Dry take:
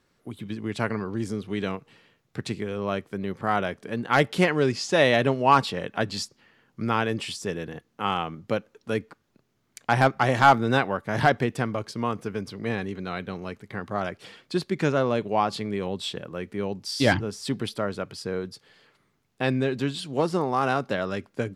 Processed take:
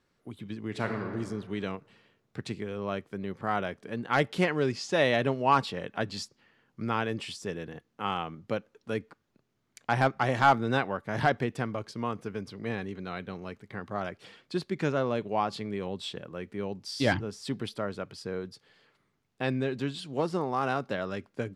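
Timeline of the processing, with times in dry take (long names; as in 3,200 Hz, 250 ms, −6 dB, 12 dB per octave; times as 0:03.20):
0:00.68–0:01.10: thrown reverb, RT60 1.7 s, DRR 4 dB
whole clip: high-shelf EQ 9,400 Hz −7 dB; level −5 dB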